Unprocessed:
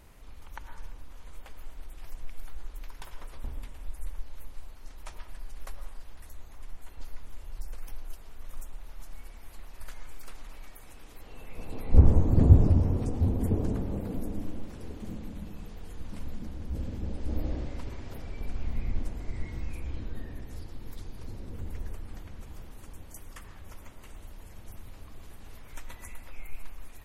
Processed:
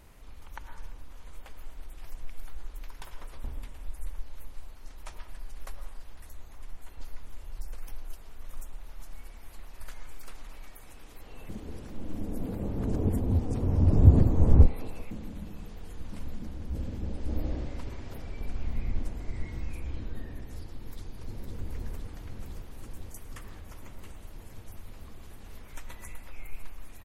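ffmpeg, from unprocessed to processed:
-filter_complex "[0:a]asplit=2[a][b];[b]afade=t=in:st=20.76:d=0.01,afade=t=out:st=21.56:d=0.01,aecho=0:1:510|1020|1530|2040|2550|3060|3570|4080|4590|5100|5610|6120:0.595662|0.506313|0.430366|0.365811|0.310939|0.264298|0.224654|0.190956|0.162312|0.137965|0.117271|0.09968[c];[a][c]amix=inputs=2:normalize=0,asplit=3[d][e][f];[d]atrim=end=11.492[g];[e]atrim=start=11.488:end=15.112,asetpts=PTS-STARTPTS,areverse[h];[f]atrim=start=15.108[i];[g][h]acrossfade=d=0.004:c1=hsin:c2=hsin[j];[j][i]acrossfade=d=0.004:c1=hsin:c2=hsin"

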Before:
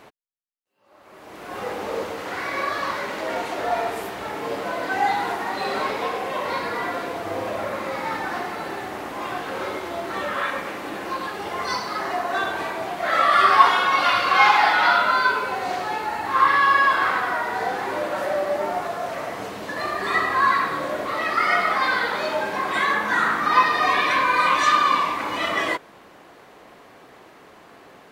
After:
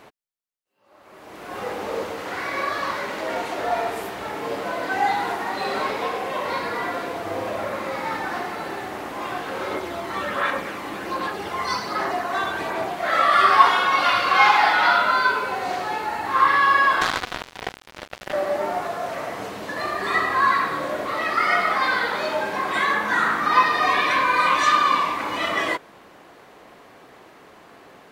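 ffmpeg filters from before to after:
-filter_complex "[0:a]asettb=1/sr,asplit=3[a][b][c];[a]atrim=end=9.714[d];[b]atrim=start=9.71:end=12.93,asetpts=PTS-STARTPTS,afade=t=in:d=0.004:c=qsin,afade=t=out:st=3.216:d=0.004:c=qsin,aphaser=in_gain=1:out_gain=1:delay=1:decay=0.29:speed=1.3:type=sinusoidal[e];[c]atrim=start=12.926[f];[d][e]acrossfade=d=0.004:c1=hsin:c2=qsin[g];[g][f]acrossfade=d=0.004:c1=qsin:c2=hsin,asettb=1/sr,asplit=3[h][i][j];[h]atrim=end=17.014[k];[i]atrim=start=17.01:end=18.33,asetpts=PTS-STARTPTS,afade=t=in:d=0.004:c=qsin,afade=t=out:st=1.316:d=0.004:c=qsin,acrusher=bits=2:mix=0:aa=0.5[l];[j]atrim=start=18.326[m];[k][l]acrossfade=d=0.004:c1=hsin:c2=qsin[n];[n][m]acrossfade=d=0.004:c1=qsin:c2=hsin"

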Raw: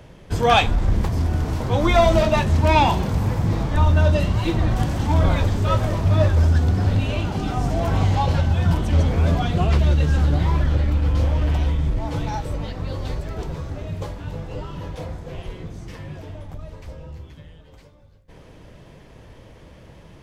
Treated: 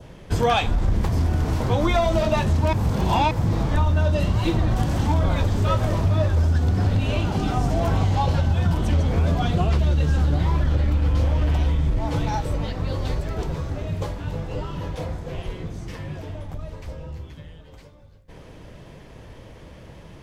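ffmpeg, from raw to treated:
-filter_complex "[0:a]asplit=3[a][b][c];[a]atrim=end=2.732[d];[b]atrim=start=2.728:end=3.312,asetpts=PTS-STARTPTS,areverse[e];[c]atrim=start=3.308[f];[d][e]acrossfade=d=0.004:c1=hsin:c2=hsin[g];[g][f]acrossfade=d=0.004:c1=hsin:c2=hsin,adynamicequalizer=threshold=0.0112:dfrequency=2100:dqfactor=1.7:tfrequency=2100:tqfactor=1.7:attack=5:release=100:ratio=0.375:range=1.5:mode=cutabove:tftype=bell,acompressor=threshold=-18dB:ratio=6,volume=2dB"

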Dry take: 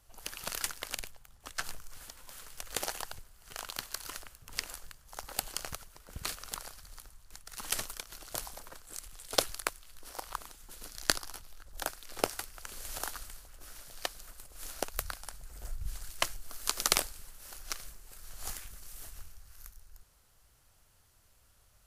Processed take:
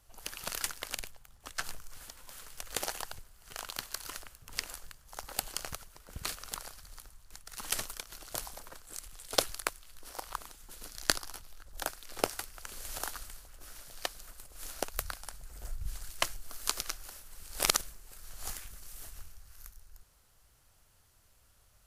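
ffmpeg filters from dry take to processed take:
-filter_complex "[0:a]asplit=3[a][b][c];[a]atrim=end=16.812[d];[b]atrim=start=16.808:end=17.812,asetpts=PTS-STARTPTS,areverse[e];[c]atrim=start=17.808[f];[d][e]acrossfade=d=0.004:c1=hsin:c2=hsin[g];[g][f]acrossfade=d=0.004:c1=hsin:c2=hsin"

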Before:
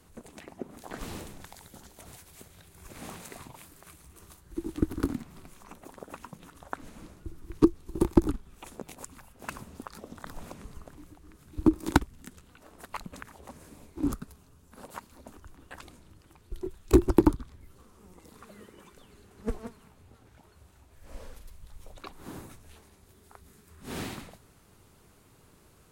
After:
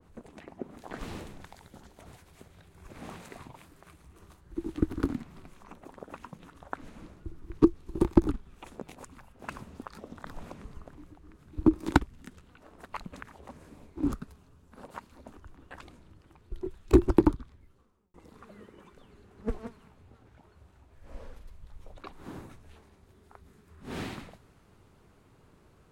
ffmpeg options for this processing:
-filter_complex "[0:a]asplit=2[a][b];[a]atrim=end=18.14,asetpts=PTS-STARTPTS,afade=t=out:st=17.12:d=1.02[c];[b]atrim=start=18.14,asetpts=PTS-STARTPTS,afade=t=in:d=0.004:c=hsin[d];[c][d]concat=n=2:v=0:a=1,lowpass=f=2.1k:p=1,adynamicequalizer=threshold=0.00398:dfrequency=1600:dqfactor=0.7:tfrequency=1600:tqfactor=0.7:attack=5:release=100:ratio=0.375:range=2:mode=boostabove:tftype=highshelf"

